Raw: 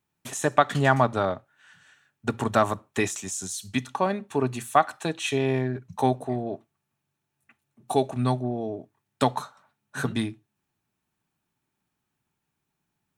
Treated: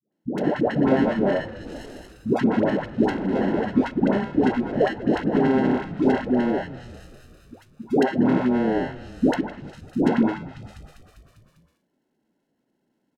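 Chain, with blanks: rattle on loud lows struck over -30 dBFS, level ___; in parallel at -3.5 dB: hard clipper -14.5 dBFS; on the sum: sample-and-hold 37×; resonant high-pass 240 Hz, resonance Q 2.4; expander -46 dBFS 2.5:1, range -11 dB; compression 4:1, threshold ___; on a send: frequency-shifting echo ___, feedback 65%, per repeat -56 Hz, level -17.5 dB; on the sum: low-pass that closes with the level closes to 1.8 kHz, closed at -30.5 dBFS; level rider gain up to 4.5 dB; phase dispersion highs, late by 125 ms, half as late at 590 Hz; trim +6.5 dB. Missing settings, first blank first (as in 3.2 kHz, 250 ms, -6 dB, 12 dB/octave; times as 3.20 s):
-9 dBFS, -30 dBFS, 199 ms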